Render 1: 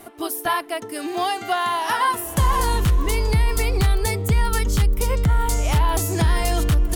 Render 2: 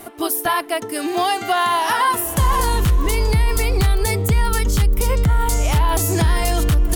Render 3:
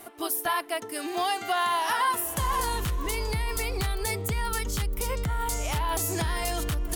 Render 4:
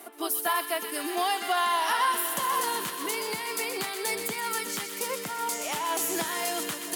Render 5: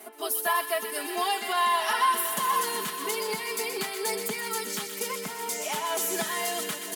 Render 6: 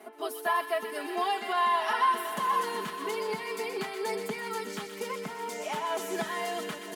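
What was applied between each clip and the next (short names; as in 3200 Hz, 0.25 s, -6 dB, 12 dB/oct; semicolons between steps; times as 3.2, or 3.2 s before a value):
high shelf 11000 Hz +3.5 dB; limiter -14.5 dBFS, peak gain reduction 4 dB; gain +5 dB
low shelf 370 Hz -7 dB; gain -7 dB
HPF 220 Hz 24 dB/oct; on a send: thin delay 0.125 s, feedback 84%, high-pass 1700 Hz, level -8 dB
comb 4.7 ms, depth 96%; gain -2.5 dB
LPF 1800 Hz 6 dB/oct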